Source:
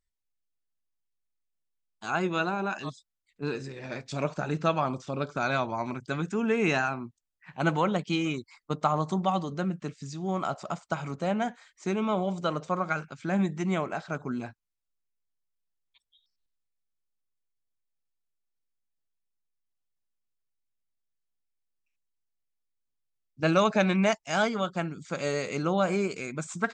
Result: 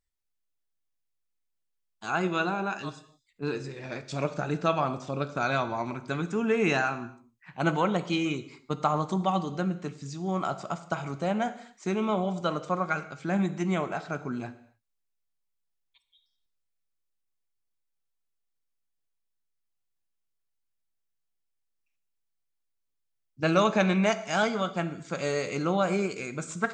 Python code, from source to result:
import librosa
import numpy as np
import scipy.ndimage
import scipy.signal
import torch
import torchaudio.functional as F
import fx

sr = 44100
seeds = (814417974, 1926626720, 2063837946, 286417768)

y = fx.rev_gated(x, sr, seeds[0], gate_ms=300, shape='falling', drr_db=11.0)